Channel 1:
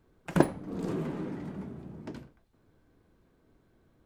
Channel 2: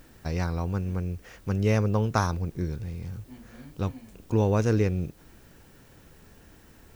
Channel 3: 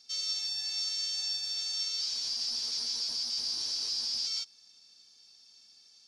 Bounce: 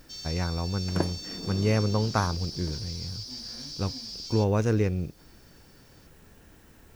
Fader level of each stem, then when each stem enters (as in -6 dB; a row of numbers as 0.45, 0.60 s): -5.5, -1.0, -6.5 dB; 0.60, 0.00, 0.00 s